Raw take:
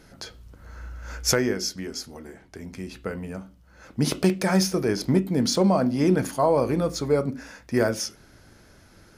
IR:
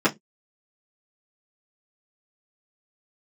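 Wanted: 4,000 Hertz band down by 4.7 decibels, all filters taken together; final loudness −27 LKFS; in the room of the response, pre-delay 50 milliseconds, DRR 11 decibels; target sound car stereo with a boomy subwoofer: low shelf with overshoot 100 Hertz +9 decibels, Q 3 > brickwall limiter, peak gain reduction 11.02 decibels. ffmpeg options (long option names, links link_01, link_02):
-filter_complex "[0:a]equalizer=frequency=4000:width_type=o:gain=-7,asplit=2[link_01][link_02];[1:a]atrim=start_sample=2205,adelay=50[link_03];[link_02][link_03]afir=irnorm=-1:irlink=0,volume=-28dB[link_04];[link_01][link_04]amix=inputs=2:normalize=0,lowshelf=frequency=100:width_type=q:width=3:gain=9,volume=3.5dB,alimiter=limit=-16.5dB:level=0:latency=1"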